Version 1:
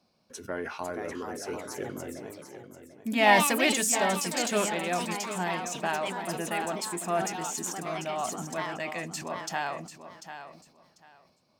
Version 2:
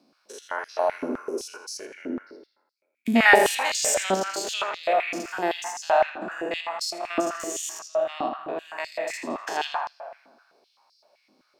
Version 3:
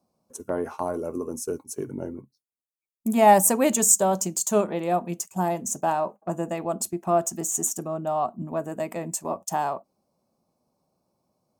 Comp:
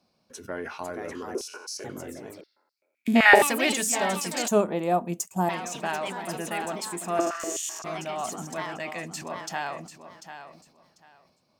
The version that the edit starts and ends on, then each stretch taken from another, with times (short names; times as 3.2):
1
1.35–1.84 from 2
2.41–3.42 from 2
4.48–5.49 from 3
7.19–7.84 from 2